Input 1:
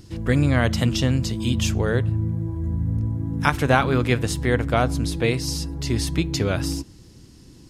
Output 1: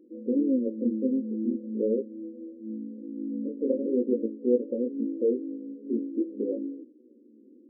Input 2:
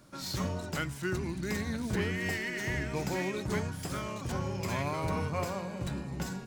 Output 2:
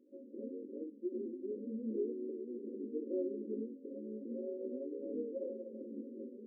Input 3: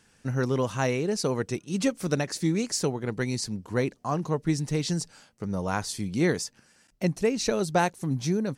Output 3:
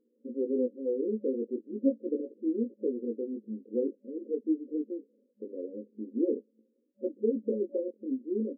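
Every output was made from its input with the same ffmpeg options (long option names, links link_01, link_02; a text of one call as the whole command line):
ffmpeg -i in.wav -af "flanger=delay=16:depth=6.7:speed=0.43,afftfilt=real='re*between(b*sr/4096,210,570)':imag='im*between(b*sr/4096,210,570)':win_size=4096:overlap=0.75,volume=1dB" out.wav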